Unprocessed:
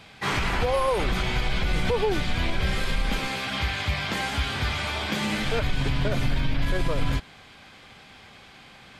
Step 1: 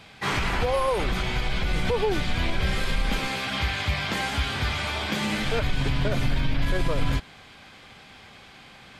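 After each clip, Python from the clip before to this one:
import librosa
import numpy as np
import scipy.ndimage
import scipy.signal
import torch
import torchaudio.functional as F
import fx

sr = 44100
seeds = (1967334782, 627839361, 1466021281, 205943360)

y = fx.rider(x, sr, range_db=10, speed_s=2.0)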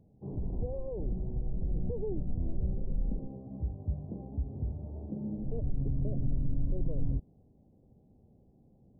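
y = scipy.ndimage.gaussian_filter1d(x, 19.0, mode='constant')
y = y * librosa.db_to_amplitude(-5.5)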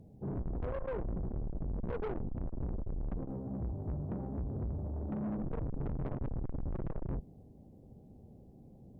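y = fx.tube_stage(x, sr, drive_db=41.0, bias=0.3)
y = y * librosa.db_to_amplitude(7.5)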